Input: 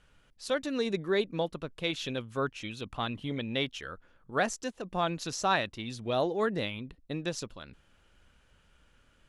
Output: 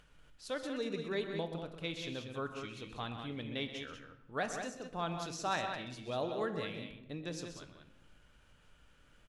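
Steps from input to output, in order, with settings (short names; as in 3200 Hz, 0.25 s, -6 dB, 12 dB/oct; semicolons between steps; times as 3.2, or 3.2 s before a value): upward compressor, threshold -48 dBFS; loudspeakers at several distances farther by 44 m -11 dB, 65 m -7 dB; shoebox room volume 430 m³, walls mixed, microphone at 0.42 m; gain -8.5 dB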